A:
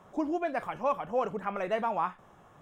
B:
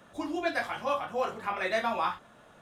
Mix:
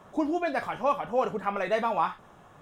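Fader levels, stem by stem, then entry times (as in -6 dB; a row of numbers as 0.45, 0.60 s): +3.0, -6.5 dB; 0.00, 0.00 s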